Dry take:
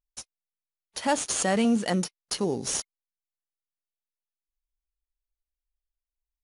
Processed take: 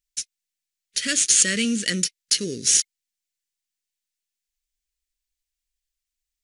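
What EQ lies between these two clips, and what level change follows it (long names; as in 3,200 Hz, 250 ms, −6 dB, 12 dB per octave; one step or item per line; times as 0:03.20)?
Butterworth band-reject 840 Hz, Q 0.77
flat-topped bell 3,600 Hz +9 dB 2.7 octaves
high-shelf EQ 6,200 Hz +9.5 dB
−1.0 dB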